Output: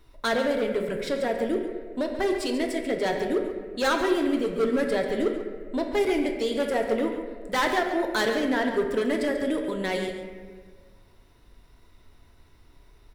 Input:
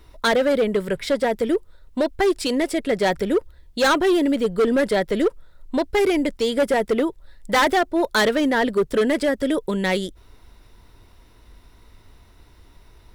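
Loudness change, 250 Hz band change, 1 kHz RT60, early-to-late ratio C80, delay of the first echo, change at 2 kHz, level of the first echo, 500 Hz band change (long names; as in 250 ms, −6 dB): −5.5 dB, −5.0 dB, 1.4 s, 5.5 dB, 139 ms, −5.5 dB, −10.5 dB, −5.0 dB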